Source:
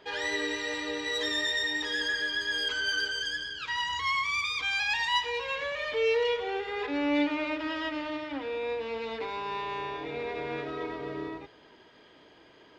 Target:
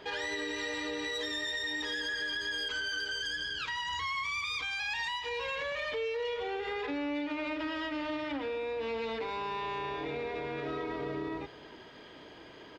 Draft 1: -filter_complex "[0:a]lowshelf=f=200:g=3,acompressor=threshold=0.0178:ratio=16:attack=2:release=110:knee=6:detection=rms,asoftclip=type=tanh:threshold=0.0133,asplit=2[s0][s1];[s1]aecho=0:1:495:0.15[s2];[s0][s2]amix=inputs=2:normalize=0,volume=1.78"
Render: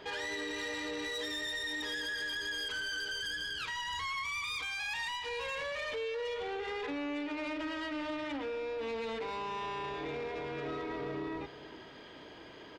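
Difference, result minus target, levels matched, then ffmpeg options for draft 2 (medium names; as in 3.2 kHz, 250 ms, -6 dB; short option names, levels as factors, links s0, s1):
saturation: distortion +17 dB; echo-to-direct +9 dB
-filter_complex "[0:a]lowshelf=f=200:g=3,acompressor=threshold=0.0178:ratio=16:attack=2:release=110:knee=6:detection=rms,asoftclip=type=tanh:threshold=0.0447,asplit=2[s0][s1];[s1]aecho=0:1:495:0.0531[s2];[s0][s2]amix=inputs=2:normalize=0,volume=1.78"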